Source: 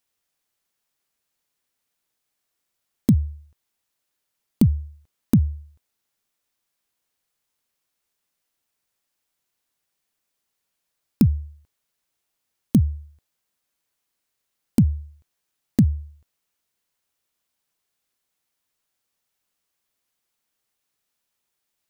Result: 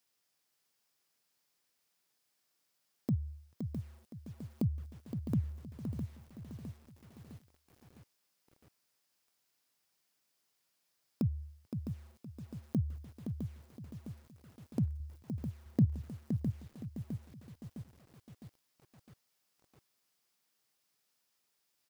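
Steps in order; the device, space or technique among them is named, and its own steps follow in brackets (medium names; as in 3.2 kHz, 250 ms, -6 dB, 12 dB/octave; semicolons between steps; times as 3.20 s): broadcast voice chain (high-pass 92 Hz 24 dB/octave; de-esser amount 95%; compression 5:1, threshold -23 dBFS, peak gain reduction 10 dB; peaking EQ 5 kHz +5.5 dB 0.28 oct; peak limiter -21 dBFS, peak gain reduction 9 dB); 15.00–15.85 s: bass shelf 460 Hz +6 dB; feedback delay 517 ms, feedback 32%, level -7.5 dB; bit-crushed delay 658 ms, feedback 55%, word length 9-bit, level -8 dB; trim -1.5 dB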